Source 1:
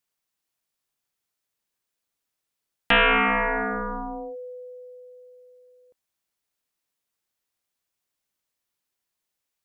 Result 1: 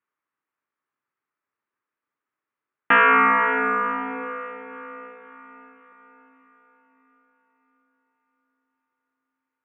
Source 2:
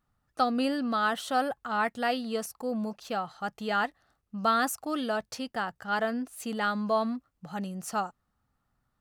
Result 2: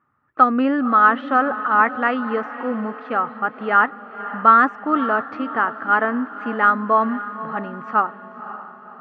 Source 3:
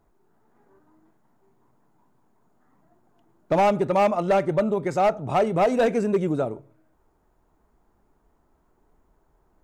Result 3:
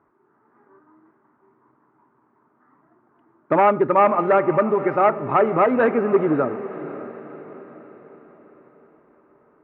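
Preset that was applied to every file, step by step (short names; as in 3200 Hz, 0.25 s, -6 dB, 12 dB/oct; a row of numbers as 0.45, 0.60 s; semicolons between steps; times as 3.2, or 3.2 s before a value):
speaker cabinet 190–2000 Hz, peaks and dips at 190 Hz -9 dB, 500 Hz -5 dB, 710 Hz -9 dB, 1200 Hz +5 dB; diffused feedback echo 0.536 s, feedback 49%, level -13.5 dB; match loudness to -19 LUFS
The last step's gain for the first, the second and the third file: +5.0, +12.5, +7.5 dB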